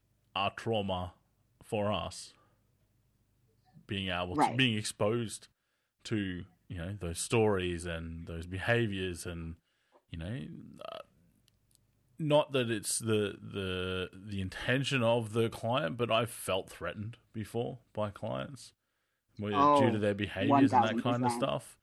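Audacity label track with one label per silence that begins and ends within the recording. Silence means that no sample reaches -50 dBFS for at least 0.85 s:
2.350000	3.770000	silence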